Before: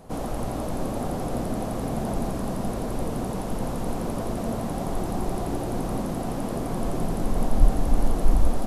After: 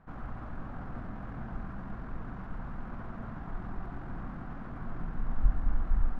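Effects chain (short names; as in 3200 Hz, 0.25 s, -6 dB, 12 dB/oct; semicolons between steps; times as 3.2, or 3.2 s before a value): bell 500 Hz -14.5 dB 1.9 oct; tempo 1.4×; synth low-pass 1500 Hz, resonance Q 2.8; gain -7.5 dB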